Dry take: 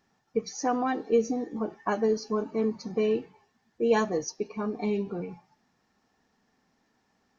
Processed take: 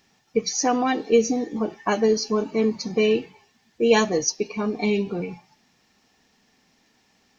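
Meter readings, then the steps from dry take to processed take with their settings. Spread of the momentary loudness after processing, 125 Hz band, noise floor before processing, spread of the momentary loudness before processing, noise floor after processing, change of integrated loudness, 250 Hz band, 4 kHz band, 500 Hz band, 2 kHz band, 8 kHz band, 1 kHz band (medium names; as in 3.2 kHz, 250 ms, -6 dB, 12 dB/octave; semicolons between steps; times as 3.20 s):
8 LU, +6.0 dB, -73 dBFS, 8 LU, -65 dBFS, +6.0 dB, +6.0 dB, +13.5 dB, +5.5 dB, +8.5 dB, no reading, +5.0 dB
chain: resonant high shelf 1.9 kHz +6.5 dB, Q 1.5; trim +6 dB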